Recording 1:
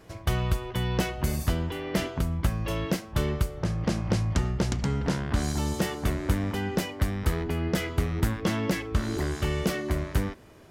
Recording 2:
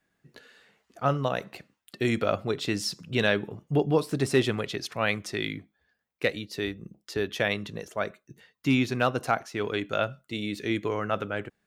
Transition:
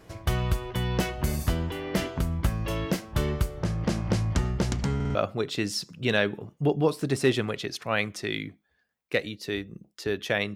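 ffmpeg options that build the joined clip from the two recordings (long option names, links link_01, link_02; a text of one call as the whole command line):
ffmpeg -i cue0.wav -i cue1.wav -filter_complex "[0:a]apad=whole_dur=10.55,atrim=end=10.55,asplit=4[link_01][link_02][link_03][link_04];[link_01]atrim=end=5.002[link_05];[link_02]atrim=start=4.948:end=5.002[link_06];[link_03]atrim=start=4.948:end=5.002[link_07];[link_04]atrim=start=4.948:end=5.002[link_08];[1:a]atrim=start=2.248:end=7.65[link_09];[link_05][link_06]acrossfade=duration=0.004:curve1=hsin:curve2=hsin[link_10];[link_10][link_07]acrossfade=duration=0.004:curve1=hsin:curve2=hsin[link_11];[link_11][link_08]acrossfade=duration=0.004:curve1=hsin:curve2=hsin[link_12];[link_12][link_09]acrossfade=duration=0.004:curve1=hsin:curve2=hsin" out.wav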